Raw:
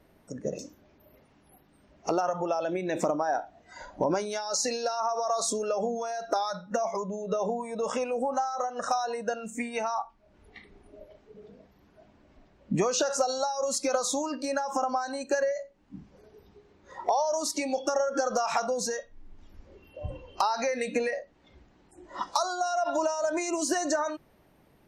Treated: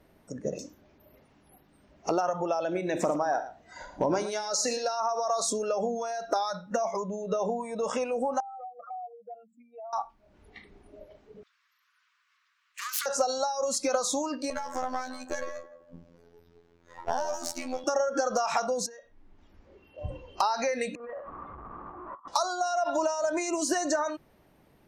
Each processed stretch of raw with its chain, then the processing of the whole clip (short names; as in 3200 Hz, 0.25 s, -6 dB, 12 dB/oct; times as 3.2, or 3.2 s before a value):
2.64–4.87 hard clip -16.5 dBFS + tapped delay 45/74/114 ms -17.5/-17/-13.5 dB
8.4–9.93 spectral contrast raised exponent 3.3 + vowel filter a + compressor 2.5:1, threshold -41 dBFS
11.43–13.06 self-modulated delay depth 0.13 ms + steep high-pass 1100 Hz 72 dB/oct
14.5–17.84 half-wave gain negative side -7 dB + robotiser 85.2 Hz + narrowing echo 0.165 s, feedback 45%, band-pass 570 Hz, level -10.5 dB
18.86–19.98 LPF 2000 Hz 6 dB/oct + tilt +1.5 dB/oct + compressor, threshold -45 dBFS
20.95–22.28 zero-crossing step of -32.5 dBFS + ladder low-pass 1200 Hz, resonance 85% + negative-ratio compressor -40 dBFS, ratio -0.5
whole clip: dry